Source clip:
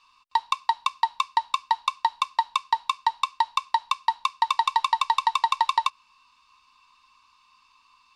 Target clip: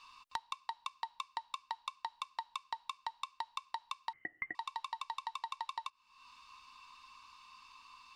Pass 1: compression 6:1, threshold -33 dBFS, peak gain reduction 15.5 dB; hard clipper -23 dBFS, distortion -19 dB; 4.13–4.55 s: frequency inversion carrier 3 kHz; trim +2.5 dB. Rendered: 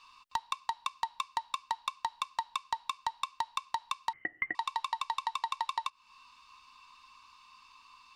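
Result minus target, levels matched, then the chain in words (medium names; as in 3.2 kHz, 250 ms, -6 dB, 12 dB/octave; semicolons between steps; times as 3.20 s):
compression: peak gain reduction -7.5 dB
compression 6:1, threshold -42 dBFS, peak gain reduction 23 dB; hard clipper -23 dBFS, distortion -37 dB; 4.13–4.55 s: frequency inversion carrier 3 kHz; trim +2.5 dB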